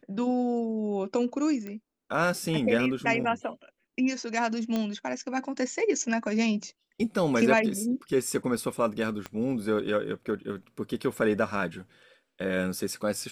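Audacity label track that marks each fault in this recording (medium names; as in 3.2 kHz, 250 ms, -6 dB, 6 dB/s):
1.670000	1.670000	pop -25 dBFS
4.760000	4.760000	pop -16 dBFS
9.260000	9.260000	pop -20 dBFS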